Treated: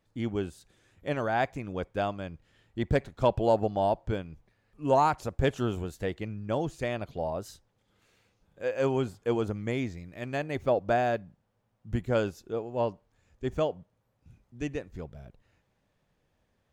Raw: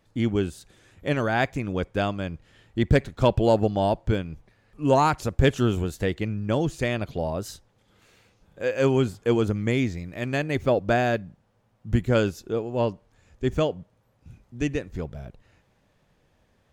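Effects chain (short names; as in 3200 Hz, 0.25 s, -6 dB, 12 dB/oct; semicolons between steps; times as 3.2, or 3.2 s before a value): dynamic EQ 770 Hz, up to +7 dB, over -36 dBFS, Q 0.99; gain -8.5 dB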